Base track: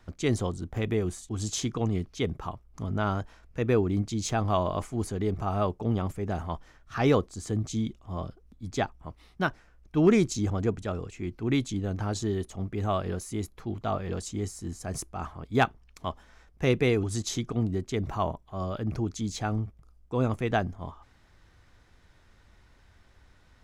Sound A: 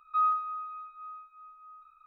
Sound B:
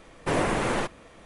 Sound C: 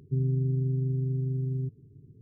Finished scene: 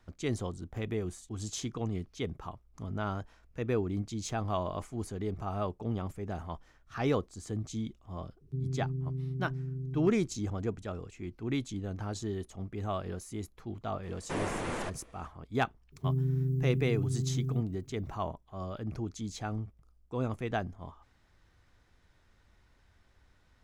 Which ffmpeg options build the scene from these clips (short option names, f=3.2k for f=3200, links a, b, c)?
-filter_complex "[3:a]asplit=2[a][b];[0:a]volume=-6.5dB[c];[b]aemphasis=mode=production:type=50fm[d];[a]atrim=end=2.21,asetpts=PTS-STARTPTS,volume=-7.5dB,afade=t=in:d=0.004:c=hsin,afade=t=out:st=2.206:d=0.004:c=hsin,adelay=8410[e];[2:a]atrim=end=1.25,asetpts=PTS-STARTPTS,volume=-9.5dB,afade=t=in:d=0.004:c=hsin,afade=t=out:st=1.246:d=0.004:c=hsin,adelay=14030[f];[d]atrim=end=2.21,asetpts=PTS-STARTPTS,volume=-2.5dB,afade=t=in:d=0.004:c=hsin,afade=t=out:st=2.206:d=0.004:c=hsin,adelay=15920[g];[c][e][f][g]amix=inputs=4:normalize=0"